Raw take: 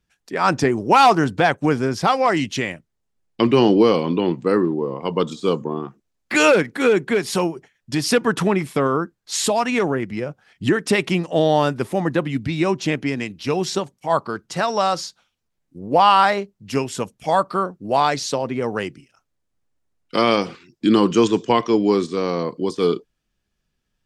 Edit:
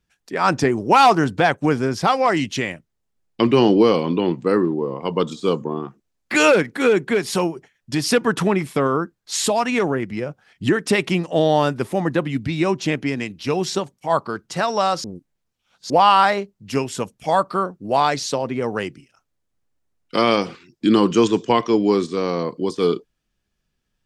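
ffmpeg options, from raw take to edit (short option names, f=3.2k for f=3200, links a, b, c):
-filter_complex "[0:a]asplit=3[a][b][c];[a]atrim=end=15.042[d];[b]atrim=start=15.038:end=15.902,asetpts=PTS-STARTPTS,areverse[e];[c]atrim=start=15.898[f];[d][e]acrossfade=d=0.004:c1=hsin:c2=hsin[g];[g][f]acrossfade=d=0.004:c1=hsin:c2=hsin"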